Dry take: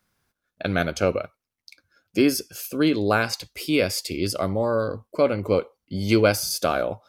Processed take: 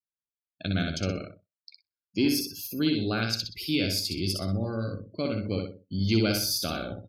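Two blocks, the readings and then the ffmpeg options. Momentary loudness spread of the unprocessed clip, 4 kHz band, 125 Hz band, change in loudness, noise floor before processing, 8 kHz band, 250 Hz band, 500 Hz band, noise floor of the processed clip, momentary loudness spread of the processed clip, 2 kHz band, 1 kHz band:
10 LU, +0.5 dB, -0.5 dB, -5.0 dB, -85 dBFS, -4.0 dB, -3.5 dB, -11.0 dB, under -85 dBFS, 9 LU, -7.5 dB, -11.5 dB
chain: -filter_complex "[0:a]equalizer=f=500:t=o:w=1:g=-11,equalizer=f=1k:t=o:w=1:g=-11,equalizer=f=2k:t=o:w=1:g=-6,equalizer=f=4k:t=o:w=1:g=5,equalizer=f=8k:t=o:w=1:g=-6,asplit=2[a][b];[b]aecho=0:1:62|124|186|248|310:0.631|0.252|0.101|0.0404|0.0162[c];[a][c]amix=inputs=2:normalize=0,adynamicequalizer=threshold=0.002:dfrequency=970:dqfactor=5:tfrequency=970:tqfactor=5:attack=5:release=100:ratio=0.375:range=2.5:mode=cutabove:tftype=bell,acontrast=89,afftdn=nr=36:nf=-38,volume=-8.5dB"

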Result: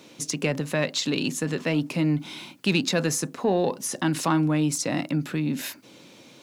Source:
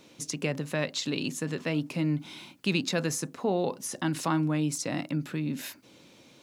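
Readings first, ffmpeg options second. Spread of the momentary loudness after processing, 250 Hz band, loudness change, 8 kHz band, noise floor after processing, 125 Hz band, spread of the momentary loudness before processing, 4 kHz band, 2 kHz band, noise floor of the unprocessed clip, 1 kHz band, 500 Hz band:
6 LU, +5.0 dB, +5.0 dB, +5.5 dB, -51 dBFS, +4.0 dB, 6 LU, +5.0 dB, +5.0 dB, -56 dBFS, +5.0 dB, +5.0 dB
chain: -filter_complex "[0:a]highpass=110,asplit=2[a][b];[b]asoftclip=type=tanh:threshold=-24dB,volume=-5dB[c];[a][c]amix=inputs=2:normalize=0,volume=2dB"

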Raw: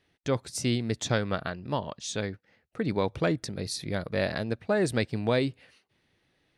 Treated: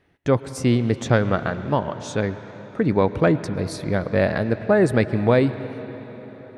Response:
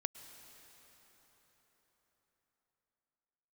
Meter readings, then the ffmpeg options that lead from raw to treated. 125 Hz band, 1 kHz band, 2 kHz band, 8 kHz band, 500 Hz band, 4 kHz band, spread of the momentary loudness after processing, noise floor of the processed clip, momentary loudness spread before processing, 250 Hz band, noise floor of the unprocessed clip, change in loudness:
+9.5 dB, +8.5 dB, +6.5 dB, -1.5 dB, +9.0 dB, -1.0 dB, 16 LU, -42 dBFS, 7 LU, +9.0 dB, -72 dBFS, +8.5 dB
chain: -filter_complex "[0:a]asplit=2[a][b];[1:a]atrim=start_sample=2205,lowpass=2.3k[c];[b][c]afir=irnorm=-1:irlink=0,volume=6.5dB[d];[a][d]amix=inputs=2:normalize=0"

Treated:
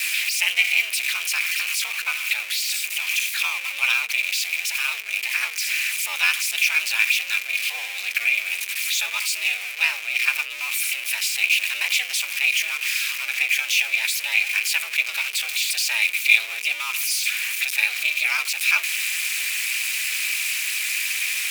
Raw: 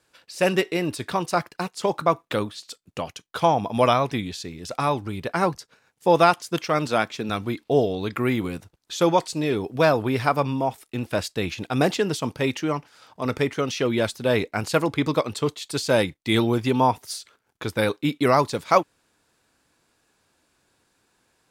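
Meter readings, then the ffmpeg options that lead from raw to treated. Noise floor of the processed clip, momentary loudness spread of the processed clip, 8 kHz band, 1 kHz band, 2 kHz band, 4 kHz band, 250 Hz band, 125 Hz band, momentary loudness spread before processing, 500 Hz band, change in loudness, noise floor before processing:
-32 dBFS, 5 LU, +13.5 dB, -14.5 dB, +12.0 dB, +9.5 dB, under -40 dB, under -40 dB, 12 LU, under -25 dB, +3.0 dB, -70 dBFS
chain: -af "aeval=exprs='val(0)+0.5*0.1*sgn(val(0))':c=same,aemphasis=mode=production:type=cd,aeval=exprs='val(0)*sin(2*PI*130*n/s)':c=same,afftdn=nr=12:nf=-44,afreqshift=200,highpass=f=2.4k:t=q:w=11,volume=-4dB"

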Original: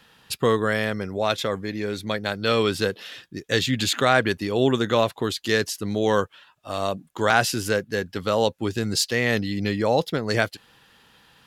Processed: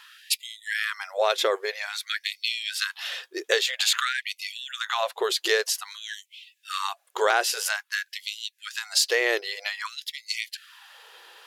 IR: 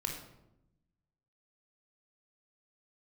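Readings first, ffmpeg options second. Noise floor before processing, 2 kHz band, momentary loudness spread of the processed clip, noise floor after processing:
-58 dBFS, -1.0 dB, 12 LU, -67 dBFS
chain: -af "acompressor=threshold=-24dB:ratio=6,afftfilt=real='re*gte(b*sr/1024,330*pow(2000/330,0.5+0.5*sin(2*PI*0.51*pts/sr)))':imag='im*gte(b*sr/1024,330*pow(2000/330,0.5+0.5*sin(2*PI*0.51*pts/sr)))':win_size=1024:overlap=0.75,volume=6.5dB"

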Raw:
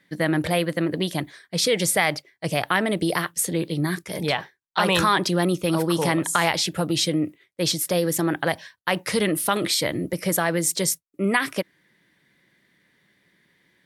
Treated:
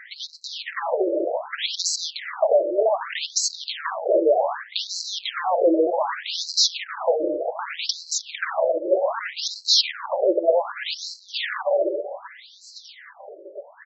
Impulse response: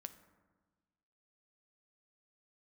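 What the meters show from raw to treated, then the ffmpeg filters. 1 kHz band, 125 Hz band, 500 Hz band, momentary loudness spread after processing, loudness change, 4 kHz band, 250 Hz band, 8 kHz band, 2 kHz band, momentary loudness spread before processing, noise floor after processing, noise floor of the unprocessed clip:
-1.0 dB, under -40 dB, +4.5 dB, 15 LU, 0.0 dB, +3.0 dB, -7.5 dB, -2.0 dB, -5.5 dB, 7 LU, -48 dBFS, -67 dBFS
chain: -filter_complex "[0:a]highpass=59,asplit=2[a][b];[1:a]atrim=start_sample=2205[c];[b][c]afir=irnorm=-1:irlink=0,volume=-3dB[d];[a][d]amix=inputs=2:normalize=0,aeval=exprs='(tanh(15.8*val(0)+0.2)-tanh(0.2))/15.8':c=same,bandreject=f=50:t=h:w=6,bandreject=f=100:t=h:w=6,bandreject=f=150:t=h:w=6,bandreject=f=200:t=h:w=6,bandreject=f=250:t=h:w=6,bandreject=f=300:t=h:w=6,acompressor=threshold=-29dB:ratio=6,equalizer=f=100:t=o:w=0.67:g=-3,equalizer=f=250:t=o:w=0.67:g=11,equalizer=f=630:t=o:w=0.67:g=12,equalizer=f=2.5k:t=o:w=0.67:g=-7,equalizer=f=6.3k:t=o:w=0.67:g=8,aecho=1:1:664|1328|1992|2656:0.119|0.0594|0.0297|0.0149,aeval=exprs='0.178*(cos(1*acos(clip(val(0)/0.178,-1,1)))-cos(1*PI/2))+0.0178*(cos(4*acos(clip(val(0)/0.178,-1,1)))-cos(4*PI/2))+0.0178*(cos(5*acos(clip(val(0)/0.178,-1,1)))-cos(5*PI/2))+0.0398*(cos(6*acos(clip(val(0)/0.178,-1,1)))-cos(6*PI/2))+0.00891*(cos(7*acos(clip(val(0)/0.178,-1,1)))-cos(7*PI/2))':c=same,highshelf=f=5.8k:t=q:w=1.5:g=-9.5,acrossover=split=370[e][f];[f]acompressor=threshold=-26dB:ratio=6[g];[e][g]amix=inputs=2:normalize=0,alimiter=level_in=25dB:limit=-1dB:release=50:level=0:latency=1,afftfilt=real='re*between(b*sr/1024,440*pow(5700/440,0.5+0.5*sin(2*PI*0.65*pts/sr))/1.41,440*pow(5700/440,0.5+0.5*sin(2*PI*0.65*pts/sr))*1.41)':imag='im*between(b*sr/1024,440*pow(5700/440,0.5+0.5*sin(2*PI*0.65*pts/sr))/1.41,440*pow(5700/440,0.5+0.5*sin(2*PI*0.65*pts/sr))*1.41)':win_size=1024:overlap=0.75,volume=-5.5dB"

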